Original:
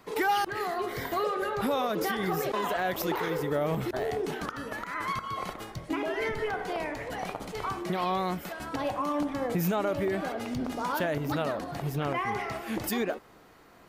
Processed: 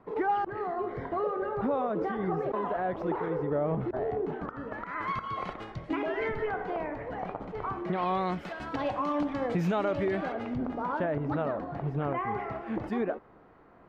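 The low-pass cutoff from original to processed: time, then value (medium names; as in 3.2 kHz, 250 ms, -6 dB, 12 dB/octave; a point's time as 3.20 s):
4.53 s 1.1 kHz
5.22 s 2.8 kHz
5.93 s 2.8 kHz
6.92 s 1.4 kHz
7.67 s 1.4 kHz
8.37 s 3.6 kHz
10.11 s 3.6 kHz
10.68 s 1.4 kHz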